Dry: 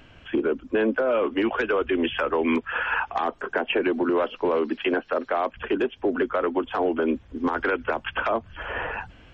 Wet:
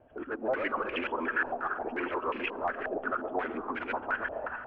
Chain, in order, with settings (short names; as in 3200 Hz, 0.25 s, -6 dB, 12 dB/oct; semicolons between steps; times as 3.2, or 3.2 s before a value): local time reversal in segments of 0.16 s; tilt +2 dB/oct; added harmonics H 2 -16 dB, 6 -18 dB, 8 -18 dB, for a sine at -12 dBFS; compressor 1.5:1, threshold -30 dBFS, peak gain reduction 4.5 dB; transient shaper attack -11 dB, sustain +3 dB; overloaded stage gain 22.5 dB; time stretch by phase-locked vocoder 0.5×; digital reverb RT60 2.4 s, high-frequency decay 0.4×, pre-delay 65 ms, DRR 7.5 dB; stepped low-pass 5.6 Hz 650–2400 Hz; gain -4.5 dB